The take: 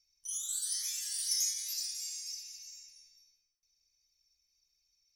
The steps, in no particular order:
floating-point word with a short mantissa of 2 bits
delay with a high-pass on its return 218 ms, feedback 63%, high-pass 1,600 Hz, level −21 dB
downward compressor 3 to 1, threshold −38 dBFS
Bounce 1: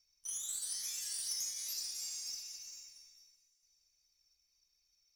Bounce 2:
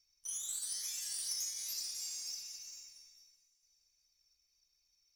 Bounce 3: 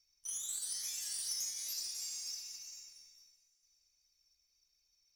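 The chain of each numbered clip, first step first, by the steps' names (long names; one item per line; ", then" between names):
downward compressor, then floating-point word with a short mantissa, then delay with a high-pass on its return
floating-point word with a short mantissa, then downward compressor, then delay with a high-pass on its return
downward compressor, then delay with a high-pass on its return, then floating-point word with a short mantissa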